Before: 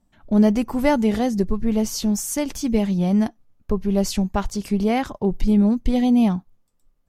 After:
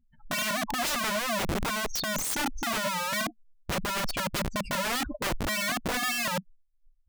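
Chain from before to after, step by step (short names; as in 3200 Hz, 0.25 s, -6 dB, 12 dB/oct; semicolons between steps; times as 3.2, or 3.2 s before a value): spectral contrast raised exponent 3.9; wrapped overs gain 24.5 dB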